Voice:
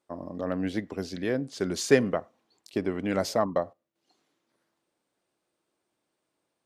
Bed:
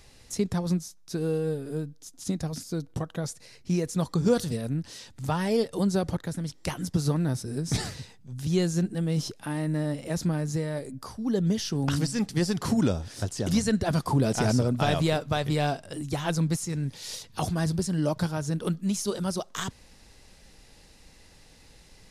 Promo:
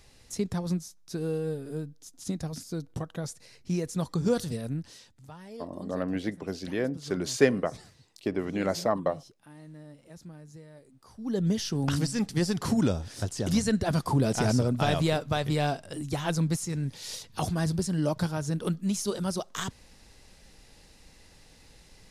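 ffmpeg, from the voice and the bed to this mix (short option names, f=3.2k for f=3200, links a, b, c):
-filter_complex "[0:a]adelay=5500,volume=-1dB[a];[1:a]volume=15dB,afade=t=out:st=4.73:d=0.53:silence=0.158489,afade=t=in:st=11.03:d=0.42:silence=0.125893[b];[a][b]amix=inputs=2:normalize=0"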